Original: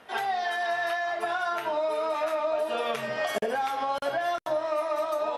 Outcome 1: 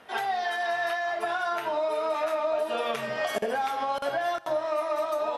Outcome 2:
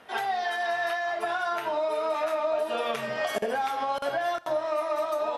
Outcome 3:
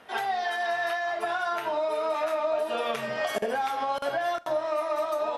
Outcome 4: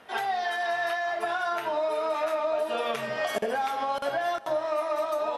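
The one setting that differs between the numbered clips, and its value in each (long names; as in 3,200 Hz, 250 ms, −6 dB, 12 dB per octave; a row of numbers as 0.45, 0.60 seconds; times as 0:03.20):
four-comb reverb, RT60: 1.6, 0.77, 0.3, 4.1 seconds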